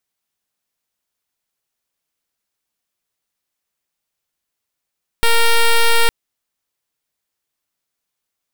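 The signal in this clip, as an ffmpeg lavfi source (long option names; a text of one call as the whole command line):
ffmpeg -f lavfi -i "aevalsrc='0.282*(2*lt(mod(463*t,1),0.07)-1)':duration=0.86:sample_rate=44100" out.wav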